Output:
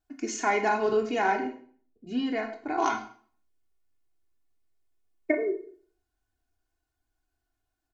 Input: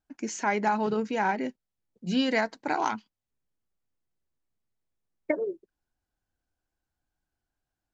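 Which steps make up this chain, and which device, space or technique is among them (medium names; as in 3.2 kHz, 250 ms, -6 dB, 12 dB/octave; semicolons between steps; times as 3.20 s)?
1.40–2.78 s: FFT filter 110 Hz 0 dB, 2.6 kHz -10 dB, 4.8 kHz -16 dB; microphone above a desk (comb 2.8 ms, depth 84%; reverberation RT60 0.45 s, pre-delay 19 ms, DRR 5 dB); trim -1 dB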